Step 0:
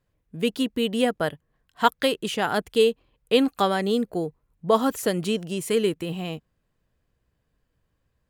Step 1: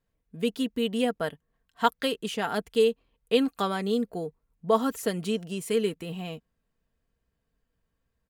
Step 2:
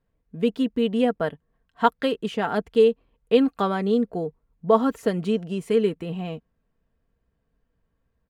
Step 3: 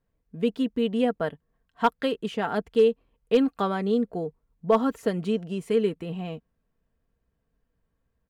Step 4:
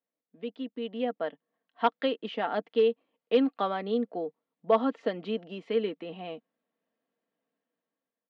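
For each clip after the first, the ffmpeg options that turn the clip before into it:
ffmpeg -i in.wav -af "aecho=1:1:4.4:0.39,volume=-5.5dB" out.wav
ffmpeg -i in.wav -af "lowpass=frequency=1500:poles=1,volume=5.5dB" out.wav
ffmpeg -i in.wav -af "asoftclip=type=hard:threshold=-9dB,volume=-2.5dB" out.wav
ffmpeg -i in.wav -af "dynaudnorm=framelen=470:gausssize=5:maxgain=10dB,highpass=frequency=270:width=0.5412,highpass=frequency=270:width=1.3066,equalizer=frequency=400:width_type=q:width=4:gain=-9,equalizer=frequency=1000:width_type=q:width=4:gain=-5,equalizer=frequency=1500:width_type=q:width=4:gain=-6,equalizer=frequency=2500:width_type=q:width=4:gain=-3,lowpass=frequency=3800:width=0.5412,lowpass=frequency=3800:width=1.3066,volume=-7.5dB" out.wav

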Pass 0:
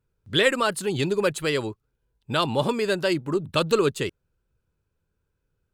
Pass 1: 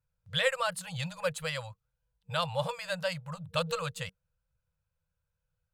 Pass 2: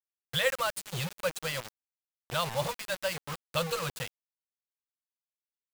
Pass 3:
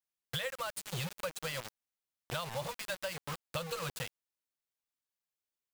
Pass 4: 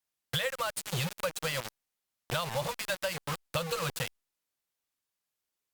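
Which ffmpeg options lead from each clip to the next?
ffmpeg -i in.wav -af "afftfilt=real='re*(1-between(b*sr/4096,190,470))':imag='im*(1-between(b*sr/4096,190,470))':win_size=4096:overlap=0.75,volume=-7dB" out.wav
ffmpeg -i in.wav -af "acrusher=bits=5:mix=0:aa=0.000001" out.wav
ffmpeg -i in.wav -af "acompressor=threshold=-35dB:ratio=10,volume=1dB" out.wav
ffmpeg -i in.wav -af "volume=5.5dB" -ar 48000 -c:a libopus -b:a 256k out.opus

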